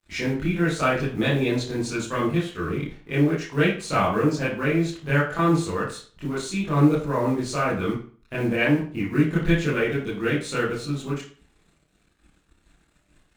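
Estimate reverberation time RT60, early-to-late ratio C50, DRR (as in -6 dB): 0.40 s, 3.5 dB, -10.0 dB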